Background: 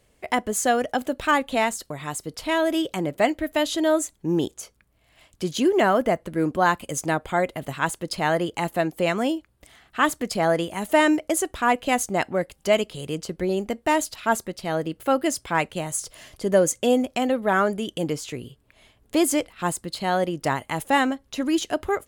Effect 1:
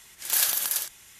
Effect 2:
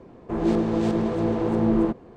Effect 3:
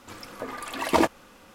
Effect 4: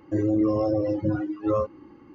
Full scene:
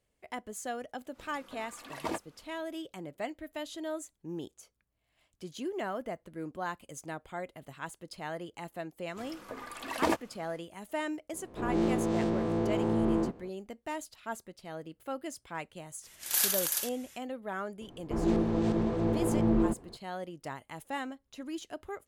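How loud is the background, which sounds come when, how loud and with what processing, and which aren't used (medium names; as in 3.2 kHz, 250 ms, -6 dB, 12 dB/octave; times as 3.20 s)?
background -16.5 dB
1.11 s: add 3 -14.5 dB, fades 0.05 s
9.09 s: add 3 -7.5 dB, fades 0.10 s
11.33 s: add 2 -10 dB + every event in the spectrogram widened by 120 ms
16.01 s: add 1 -4.5 dB, fades 0.05 s
17.81 s: add 2 -6.5 dB + bass shelf 91 Hz +8.5 dB
not used: 4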